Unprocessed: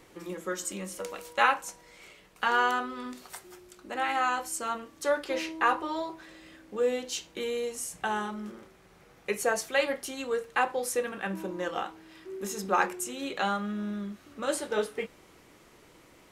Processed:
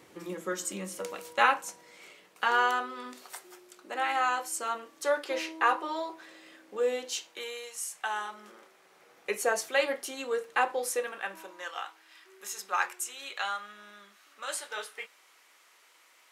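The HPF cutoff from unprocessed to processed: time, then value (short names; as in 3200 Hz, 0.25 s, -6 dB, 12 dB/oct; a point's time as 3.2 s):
1.17 s 110 Hz
2.68 s 370 Hz
7.03 s 370 Hz
7.69 s 1100 Hz
9.44 s 310 Hz
10.76 s 310 Hz
11.63 s 1100 Hz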